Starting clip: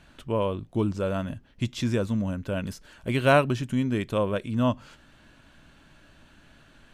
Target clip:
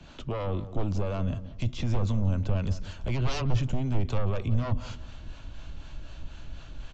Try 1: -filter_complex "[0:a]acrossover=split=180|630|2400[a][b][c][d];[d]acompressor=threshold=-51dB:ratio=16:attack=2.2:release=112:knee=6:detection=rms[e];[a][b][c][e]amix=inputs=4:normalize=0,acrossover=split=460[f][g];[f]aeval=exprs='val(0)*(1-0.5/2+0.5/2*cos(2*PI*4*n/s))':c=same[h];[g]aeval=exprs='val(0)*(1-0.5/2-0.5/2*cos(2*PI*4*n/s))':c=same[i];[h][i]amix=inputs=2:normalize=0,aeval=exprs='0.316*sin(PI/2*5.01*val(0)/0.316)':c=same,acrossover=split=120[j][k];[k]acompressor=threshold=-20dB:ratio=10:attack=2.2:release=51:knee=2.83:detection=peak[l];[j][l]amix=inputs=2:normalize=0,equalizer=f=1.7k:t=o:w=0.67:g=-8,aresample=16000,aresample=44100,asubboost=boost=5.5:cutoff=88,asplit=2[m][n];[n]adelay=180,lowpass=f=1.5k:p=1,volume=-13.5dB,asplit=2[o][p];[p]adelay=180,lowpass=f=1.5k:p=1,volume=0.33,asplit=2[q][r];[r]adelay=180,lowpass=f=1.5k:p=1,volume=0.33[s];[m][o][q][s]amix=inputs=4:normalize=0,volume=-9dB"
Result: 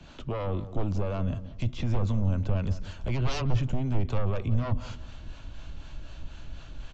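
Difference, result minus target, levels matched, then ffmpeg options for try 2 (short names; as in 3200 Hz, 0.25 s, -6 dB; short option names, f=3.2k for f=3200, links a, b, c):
compressor: peak gain reduction +5.5 dB
-filter_complex "[0:a]acrossover=split=180|630|2400[a][b][c][d];[d]acompressor=threshold=-45dB:ratio=16:attack=2.2:release=112:knee=6:detection=rms[e];[a][b][c][e]amix=inputs=4:normalize=0,acrossover=split=460[f][g];[f]aeval=exprs='val(0)*(1-0.5/2+0.5/2*cos(2*PI*4*n/s))':c=same[h];[g]aeval=exprs='val(0)*(1-0.5/2-0.5/2*cos(2*PI*4*n/s))':c=same[i];[h][i]amix=inputs=2:normalize=0,aeval=exprs='0.316*sin(PI/2*5.01*val(0)/0.316)':c=same,acrossover=split=120[j][k];[k]acompressor=threshold=-20dB:ratio=10:attack=2.2:release=51:knee=2.83:detection=peak[l];[j][l]amix=inputs=2:normalize=0,equalizer=f=1.7k:t=o:w=0.67:g=-8,aresample=16000,aresample=44100,asubboost=boost=5.5:cutoff=88,asplit=2[m][n];[n]adelay=180,lowpass=f=1.5k:p=1,volume=-13.5dB,asplit=2[o][p];[p]adelay=180,lowpass=f=1.5k:p=1,volume=0.33,asplit=2[q][r];[r]adelay=180,lowpass=f=1.5k:p=1,volume=0.33[s];[m][o][q][s]amix=inputs=4:normalize=0,volume=-9dB"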